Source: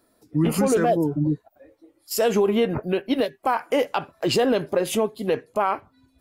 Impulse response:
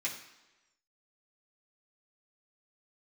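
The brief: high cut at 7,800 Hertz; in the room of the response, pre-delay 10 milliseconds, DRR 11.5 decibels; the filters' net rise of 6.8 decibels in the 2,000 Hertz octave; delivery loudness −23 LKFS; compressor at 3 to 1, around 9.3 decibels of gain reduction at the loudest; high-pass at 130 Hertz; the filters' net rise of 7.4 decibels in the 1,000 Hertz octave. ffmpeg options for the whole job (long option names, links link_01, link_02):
-filter_complex "[0:a]highpass=130,lowpass=7800,equalizer=frequency=1000:width_type=o:gain=8.5,equalizer=frequency=2000:width_type=o:gain=6,acompressor=threshold=-23dB:ratio=3,asplit=2[link_01][link_02];[1:a]atrim=start_sample=2205,adelay=10[link_03];[link_02][link_03]afir=irnorm=-1:irlink=0,volume=-15dB[link_04];[link_01][link_04]amix=inputs=2:normalize=0,volume=3.5dB"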